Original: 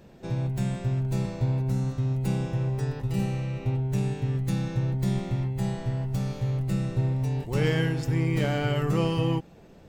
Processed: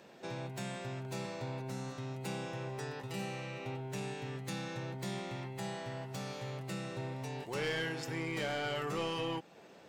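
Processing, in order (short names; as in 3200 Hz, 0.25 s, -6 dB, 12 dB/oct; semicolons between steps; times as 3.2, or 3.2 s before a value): weighting filter A; in parallel at -2 dB: compressor, threshold -42 dBFS, peak gain reduction 16 dB; on the sum: soft clip -24.5 dBFS, distortion -15 dB; gain -4 dB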